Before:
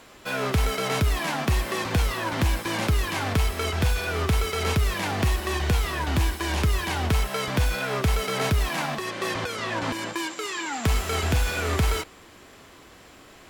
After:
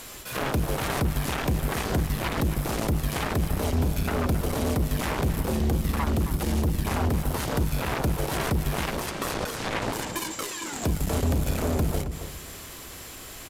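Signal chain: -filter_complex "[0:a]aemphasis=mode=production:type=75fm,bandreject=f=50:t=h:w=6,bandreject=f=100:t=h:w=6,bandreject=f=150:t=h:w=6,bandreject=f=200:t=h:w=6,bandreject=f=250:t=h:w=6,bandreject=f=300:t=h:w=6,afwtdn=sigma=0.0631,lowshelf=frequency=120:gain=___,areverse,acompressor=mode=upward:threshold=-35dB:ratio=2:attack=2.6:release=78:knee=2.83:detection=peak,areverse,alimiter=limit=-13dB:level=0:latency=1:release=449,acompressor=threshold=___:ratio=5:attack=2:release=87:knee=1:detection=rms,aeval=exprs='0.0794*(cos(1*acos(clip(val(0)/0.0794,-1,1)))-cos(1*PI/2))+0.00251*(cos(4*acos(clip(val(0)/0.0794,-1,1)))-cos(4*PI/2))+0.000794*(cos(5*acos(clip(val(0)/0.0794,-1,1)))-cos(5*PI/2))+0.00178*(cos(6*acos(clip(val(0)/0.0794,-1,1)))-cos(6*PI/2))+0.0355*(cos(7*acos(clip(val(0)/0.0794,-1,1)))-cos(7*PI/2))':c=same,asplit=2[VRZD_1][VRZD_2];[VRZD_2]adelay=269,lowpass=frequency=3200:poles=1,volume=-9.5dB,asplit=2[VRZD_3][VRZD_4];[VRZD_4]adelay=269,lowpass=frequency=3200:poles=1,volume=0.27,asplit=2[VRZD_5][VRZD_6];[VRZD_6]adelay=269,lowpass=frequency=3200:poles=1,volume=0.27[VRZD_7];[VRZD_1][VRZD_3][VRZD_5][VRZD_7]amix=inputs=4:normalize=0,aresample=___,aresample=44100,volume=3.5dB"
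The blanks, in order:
11.5, -29dB, 32000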